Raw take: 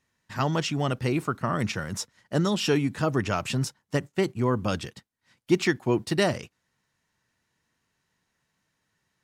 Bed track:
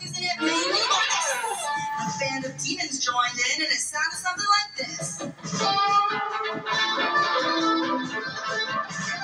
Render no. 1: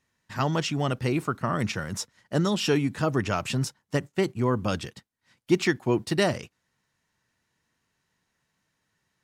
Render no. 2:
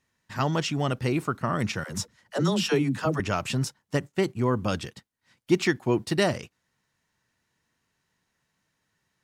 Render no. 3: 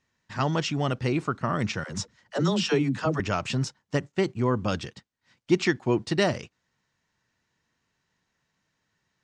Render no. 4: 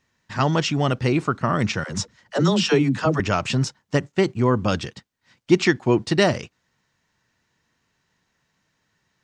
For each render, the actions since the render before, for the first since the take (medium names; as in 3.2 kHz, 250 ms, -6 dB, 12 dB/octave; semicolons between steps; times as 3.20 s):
no audible change
1.84–3.20 s: phase dispersion lows, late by 68 ms, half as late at 340 Hz
low-pass 7.3 kHz 24 dB/octave
trim +5.5 dB